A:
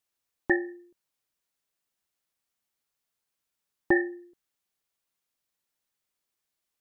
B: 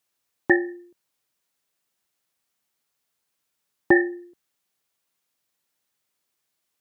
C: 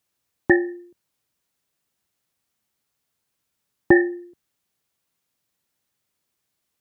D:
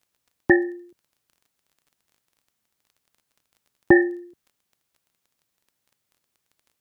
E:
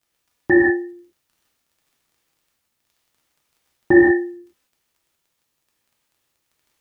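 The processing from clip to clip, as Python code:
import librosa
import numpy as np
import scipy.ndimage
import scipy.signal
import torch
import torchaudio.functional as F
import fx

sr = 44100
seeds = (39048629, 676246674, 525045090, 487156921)

y1 = scipy.signal.sosfilt(scipy.signal.butter(2, 80.0, 'highpass', fs=sr, output='sos'), x)
y1 = y1 * librosa.db_to_amplitude(6.0)
y2 = fx.low_shelf(y1, sr, hz=230.0, db=10.0)
y3 = fx.dmg_crackle(y2, sr, seeds[0], per_s=21.0, level_db=-45.0)
y4 = fx.rev_gated(y3, sr, seeds[1], gate_ms=210, shape='flat', drr_db=-5.0)
y4 = y4 * librosa.db_to_amplitude(-4.0)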